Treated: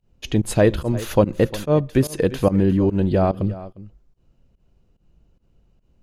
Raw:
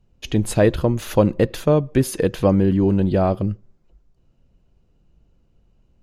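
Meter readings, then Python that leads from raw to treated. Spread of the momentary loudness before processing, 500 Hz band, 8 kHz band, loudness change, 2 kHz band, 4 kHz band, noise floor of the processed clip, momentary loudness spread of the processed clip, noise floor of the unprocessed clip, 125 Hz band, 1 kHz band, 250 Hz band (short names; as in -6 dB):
7 LU, -0.5 dB, -1.5 dB, -0.5 dB, 0.0 dB, 0.0 dB, -63 dBFS, 7 LU, -61 dBFS, -0.5 dB, -0.5 dB, -1.0 dB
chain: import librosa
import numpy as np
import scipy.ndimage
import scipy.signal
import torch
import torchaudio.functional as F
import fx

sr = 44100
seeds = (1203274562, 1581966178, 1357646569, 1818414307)

y = x + 10.0 ** (-16.5 / 20.0) * np.pad(x, (int(353 * sr / 1000.0), 0))[:len(x)]
y = fx.volume_shaper(y, sr, bpm=145, per_beat=1, depth_db=-20, release_ms=104.0, shape='fast start')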